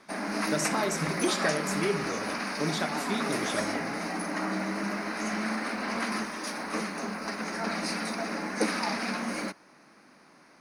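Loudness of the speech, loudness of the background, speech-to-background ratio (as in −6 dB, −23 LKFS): −32.5 LKFS, −31.5 LKFS, −1.0 dB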